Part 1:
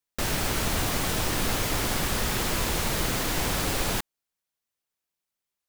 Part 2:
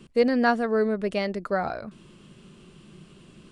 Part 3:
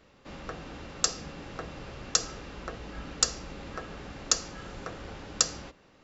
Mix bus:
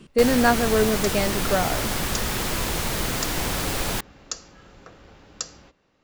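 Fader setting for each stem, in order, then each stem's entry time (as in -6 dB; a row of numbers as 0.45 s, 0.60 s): +1.0 dB, +2.5 dB, -7.0 dB; 0.00 s, 0.00 s, 0.00 s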